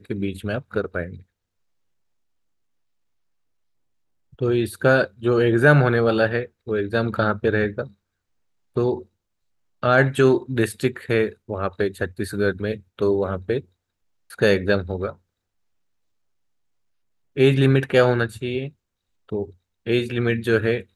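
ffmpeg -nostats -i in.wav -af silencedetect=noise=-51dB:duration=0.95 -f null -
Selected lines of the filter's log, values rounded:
silence_start: 1.23
silence_end: 4.33 | silence_duration: 3.10
silence_start: 15.17
silence_end: 17.36 | silence_duration: 2.19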